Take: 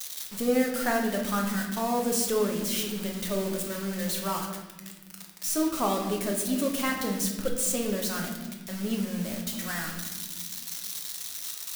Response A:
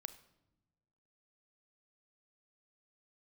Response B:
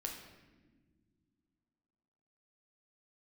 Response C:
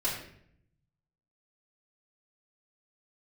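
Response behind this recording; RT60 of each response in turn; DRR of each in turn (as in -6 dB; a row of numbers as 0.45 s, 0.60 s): B; no single decay rate, no single decay rate, 0.65 s; 11.5 dB, 0.5 dB, -10.0 dB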